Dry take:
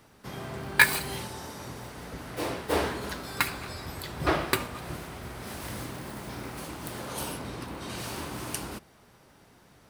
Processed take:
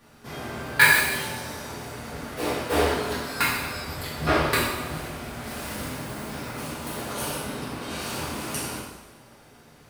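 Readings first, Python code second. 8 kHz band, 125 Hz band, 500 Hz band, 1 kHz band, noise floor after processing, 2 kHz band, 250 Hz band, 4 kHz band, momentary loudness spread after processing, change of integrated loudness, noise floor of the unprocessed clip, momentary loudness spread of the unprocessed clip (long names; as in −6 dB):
+5.5 dB, +4.0 dB, +5.5 dB, +5.0 dB, −52 dBFS, +5.5 dB, +4.5 dB, +5.5 dB, 15 LU, +5.5 dB, −58 dBFS, 14 LU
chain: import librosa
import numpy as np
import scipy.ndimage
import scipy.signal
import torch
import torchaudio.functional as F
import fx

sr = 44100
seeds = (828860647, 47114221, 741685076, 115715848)

y = fx.rev_double_slope(x, sr, seeds[0], early_s=0.91, late_s=2.3, knee_db=-18, drr_db=-8.0)
y = F.gain(torch.from_numpy(y), -3.0).numpy()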